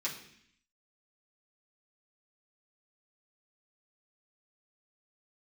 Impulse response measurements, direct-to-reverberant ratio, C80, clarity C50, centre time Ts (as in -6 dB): -7.0 dB, 11.0 dB, 8.0 dB, 24 ms